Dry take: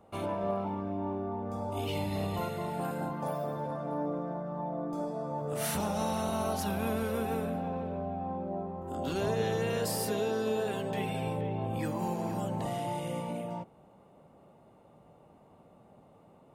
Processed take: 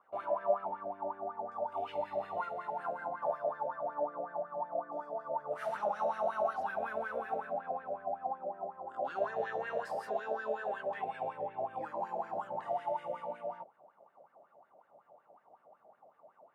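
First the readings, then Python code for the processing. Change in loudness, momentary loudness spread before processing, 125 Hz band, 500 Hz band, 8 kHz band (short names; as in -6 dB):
-3.5 dB, 5 LU, -24.0 dB, -2.5 dB, under -25 dB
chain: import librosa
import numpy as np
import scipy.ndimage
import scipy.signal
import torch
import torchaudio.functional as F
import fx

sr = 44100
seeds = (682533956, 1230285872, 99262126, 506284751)

y = fx.wah_lfo(x, sr, hz=5.4, low_hz=600.0, high_hz=1700.0, q=7.6)
y = y * librosa.db_to_amplitude(9.0)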